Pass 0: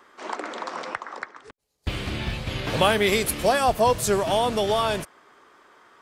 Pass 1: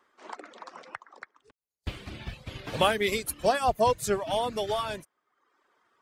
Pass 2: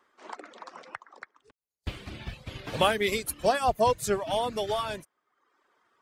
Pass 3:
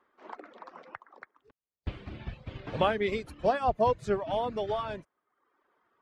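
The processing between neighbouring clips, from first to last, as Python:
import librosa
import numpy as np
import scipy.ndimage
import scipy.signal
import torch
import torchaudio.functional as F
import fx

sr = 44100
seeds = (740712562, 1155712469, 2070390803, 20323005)

y1 = fx.dereverb_blind(x, sr, rt60_s=0.86)
y1 = fx.upward_expand(y1, sr, threshold_db=-38.0, expansion=1.5)
y1 = F.gain(torch.from_numpy(y1), -2.5).numpy()
y2 = y1
y3 = fx.spacing_loss(y2, sr, db_at_10k=27)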